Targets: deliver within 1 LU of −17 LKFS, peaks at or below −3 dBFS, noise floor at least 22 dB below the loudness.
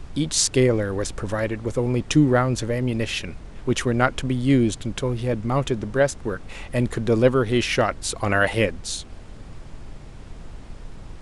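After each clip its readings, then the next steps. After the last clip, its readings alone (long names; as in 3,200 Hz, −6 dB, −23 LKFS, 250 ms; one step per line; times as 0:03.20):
background noise floor −40 dBFS; target noise floor −45 dBFS; integrated loudness −22.5 LKFS; sample peak −3.5 dBFS; target loudness −17.0 LKFS
→ noise reduction from a noise print 6 dB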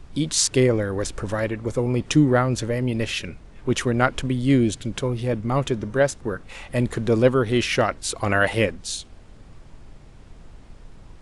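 background noise floor −46 dBFS; integrated loudness −22.5 LKFS; sample peak −3.5 dBFS; target loudness −17.0 LKFS
→ level +5.5 dB
brickwall limiter −3 dBFS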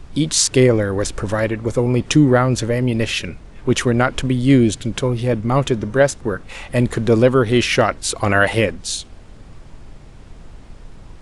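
integrated loudness −17.5 LKFS; sample peak −3.0 dBFS; background noise floor −40 dBFS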